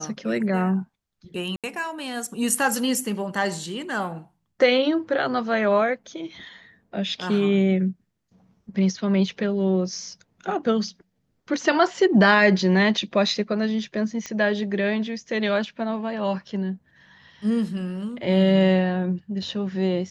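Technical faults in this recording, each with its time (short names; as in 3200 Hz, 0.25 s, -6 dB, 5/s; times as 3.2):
1.56–1.64 gap 77 ms
14.26 pop -16 dBFS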